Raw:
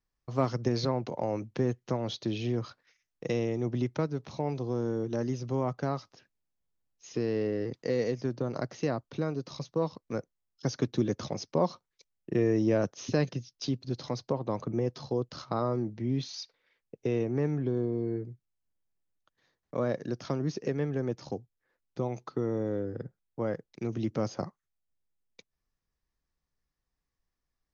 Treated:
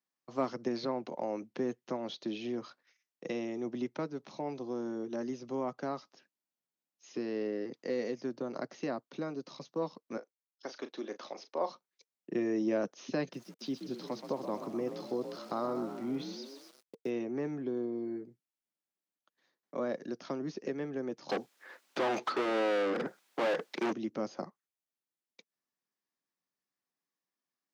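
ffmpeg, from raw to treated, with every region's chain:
-filter_complex "[0:a]asettb=1/sr,asplit=3[a][b][c];[a]atrim=end=10.174[d];[b]atrim=start=10.17:end=11.7,asetpts=PTS-STARTPTS,afade=t=in:d=0.004:c=qsin,afade=t=out:st=1.526:d=0.004:c=qsin,agate=range=-33dB:threshold=-60dB:ratio=3:release=100:detection=peak,highpass=490,lowpass=5.1k,asplit=2[e][f];[f]adelay=36,volume=-11.5dB[g];[e][g]amix=inputs=2:normalize=0,atrim=end_sample=67473[h];[c]atrim=start=11.696[i];[d][h]acrossfade=d=0.004:c1=hsin:c2=qsin[j];[j][i]acrossfade=d=0.004:c1=qsin:c2=hsin,asettb=1/sr,asplit=3[k][l][m];[k]atrim=end=13.334[n];[l]atrim=start=13.33:end=17.1,asetpts=PTS-STARTPTS,afade=t=in:d=0.004:c=qsin,afade=t=out:st=3.766:d=0.004:c=qsin,asplit=8[o][p][q][r][s][t][u][v];[p]adelay=126,afreqshift=47,volume=-9.5dB[w];[q]adelay=252,afreqshift=94,volume=-14.2dB[x];[r]adelay=378,afreqshift=141,volume=-19dB[y];[s]adelay=504,afreqshift=188,volume=-23.7dB[z];[t]adelay=630,afreqshift=235,volume=-28.4dB[aa];[u]adelay=756,afreqshift=282,volume=-33.2dB[ab];[v]adelay=882,afreqshift=329,volume=-37.9dB[ac];[o][w][x][y][z][aa][ab][ac]amix=inputs=8:normalize=0,atrim=end_sample=166257,aeval=exprs='val(0)*gte(abs(val(0)),0.00376)':c=same[ad];[m]atrim=start=17.096[ae];[n][ad]acrossfade=d=0.004:c1=hsin:c2=qsin[af];[af][ae]acrossfade=d=0.004:c1=qsin:c2=hsin,asettb=1/sr,asplit=3[ag][ah][ai];[ag]atrim=end=21.294[aj];[ah]atrim=start=21.29:end=23.93,asetpts=PTS-STARTPTS,afade=t=in:d=0.004:c=qsin,afade=t=out:st=2.636:d=0.004:c=qsin,highpass=160,asplit=2[ak][al];[al]highpass=f=720:p=1,volume=37dB,asoftclip=type=tanh:threshold=-19.5dB[am];[ak][am]amix=inputs=2:normalize=0,lowpass=f=5.3k:p=1,volume=-6dB[an];[ai]atrim=start=23.926[ao];[aj][an]acrossfade=d=0.004:c1=hsin:c2=qsin[ap];[ap][ao]acrossfade=d=0.004:c1=qsin:c2=hsin,acrossover=split=4500[aq][ar];[ar]acompressor=threshold=-53dB:ratio=4:attack=1:release=60[as];[aq][as]amix=inputs=2:normalize=0,highpass=f=200:w=0.5412,highpass=f=200:w=1.3066,bandreject=f=460:w=12,volume=-3.5dB"

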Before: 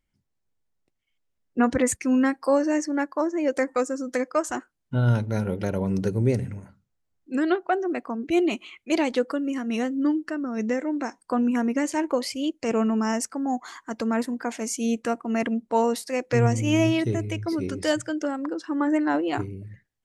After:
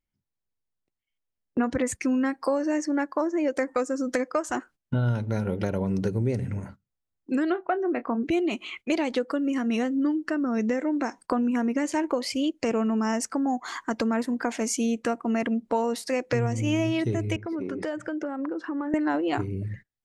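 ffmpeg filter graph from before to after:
-filter_complex "[0:a]asettb=1/sr,asplit=3[a][b][c];[a]atrim=end=7.504[d];[b]atrim=start=7.5:end=8.23,asetpts=PTS-STARTPTS,afade=t=in:d=0.004:c=qsin,afade=t=out:st=0.726:d=0.004:c=qsin,lowpass=2.7k,asplit=2[e][f];[f]adelay=26,volume=-13.5dB[g];[e][g]amix=inputs=2:normalize=0,atrim=end_sample=32193[h];[c]atrim=start=8.226[i];[d][h]acrossfade=d=0.004:c1=hsin:c2=qsin[j];[j][i]acrossfade=d=0.004:c1=qsin:c2=hsin,asettb=1/sr,asplit=3[k][l][m];[k]atrim=end=17.364[n];[l]atrim=start=17.36:end=18.94,asetpts=PTS-STARTPTS,afade=t=in:d=0.004:c=qsin,afade=t=out:st=1.576:d=0.004:c=qsin,acrossover=split=170 2200:gain=0.0708 1 0.158[o][p][q];[o][p][q]amix=inputs=3:normalize=0,acompressor=threshold=-36dB:ratio=6:attack=3.2:release=140:knee=1:detection=peak[r];[m]atrim=start=18.936[s];[n][r]acrossfade=d=0.004:c1=hsin:c2=qsin[t];[t][s]acrossfade=d=0.004:c1=qsin:c2=hsin,agate=range=-17dB:threshold=-50dB:ratio=16:detection=peak,highshelf=f=8.8k:g=-7.5,acompressor=threshold=-33dB:ratio=4,volume=8.5dB"

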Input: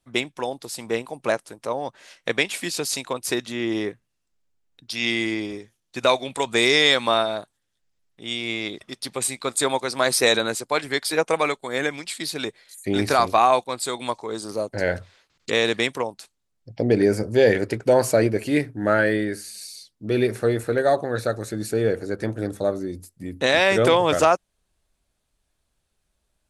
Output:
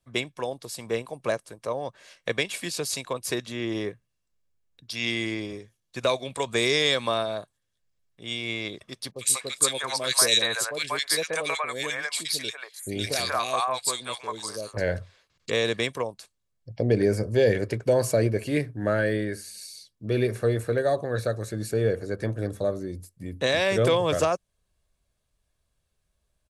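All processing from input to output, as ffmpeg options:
-filter_complex "[0:a]asettb=1/sr,asplit=3[a][b][c];[a]atrim=end=9.114[d];[b]atrim=start=9.11:end=14.77,asetpts=PTS-STARTPTS,afade=t=in:d=0.004:c=qsin,afade=t=out:st=5.656:d=0.004:c=qsin,tiltshelf=f=840:g=-6.5,acrossover=split=600|2000[e][f][g];[g]adelay=50[h];[f]adelay=190[i];[e][i][h]amix=inputs=3:normalize=0,atrim=end_sample=249606[j];[c]atrim=start=14.766[k];[d][j]acrossfade=d=0.004:c1=hsin:c2=qsin[l];[l][k]acrossfade=d=0.004:c1=qsin:c2=hsin,equalizer=f=110:w=0.7:g=4.5,aecho=1:1:1.8:0.31,acrossover=split=480|3000[m][n][o];[n]acompressor=threshold=-24dB:ratio=2[p];[m][p][o]amix=inputs=3:normalize=0,volume=-4dB"

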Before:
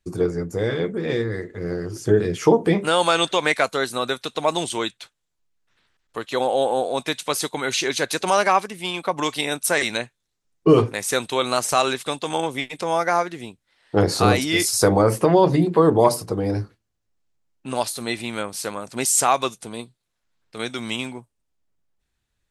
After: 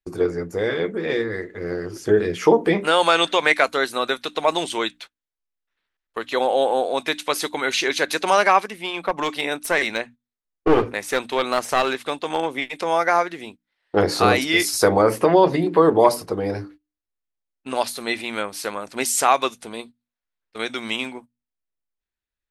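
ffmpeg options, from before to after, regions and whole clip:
-filter_complex "[0:a]asettb=1/sr,asplit=3[a][b][c];[a]atrim=end=8.784[d];[b]atrim=start=8.78:end=12.62,asetpts=PTS-STARTPTS,afade=t=in:d=0.004:c=qsin,afade=t=out:st=3.836:d=0.004:c=qsin,highshelf=f=2.5k:g=-5.5,aeval=exprs='clip(val(0),-1,0.1)':c=same[e];[c]atrim=start=12.616[f];[d][e]acrossfade=d=0.004:c1=hsin:c2=qsin[g];[g][f]acrossfade=d=0.004:c1=qsin:c2=hsin,bandreject=f=60:t=h:w=6,bandreject=f=120:t=h:w=6,bandreject=f=180:t=h:w=6,bandreject=f=240:t=h:w=6,bandreject=f=300:t=h:w=6,agate=range=-15dB:threshold=-40dB:ratio=16:detection=peak,equalizer=f=125:t=o:w=1:g=-11,equalizer=f=2k:t=o:w=1:g=3,equalizer=f=8k:t=o:w=1:g=-6,volume=1.5dB"

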